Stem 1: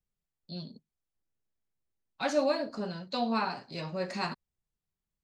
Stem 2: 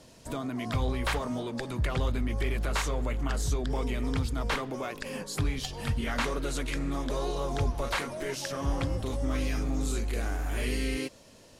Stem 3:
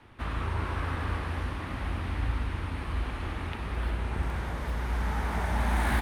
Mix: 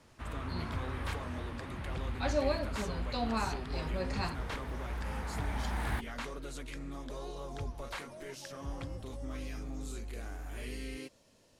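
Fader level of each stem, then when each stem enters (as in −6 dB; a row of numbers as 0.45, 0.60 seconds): −4.0, −11.0, −8.5 decibels; 0.00, 0.00, 0.00 seconds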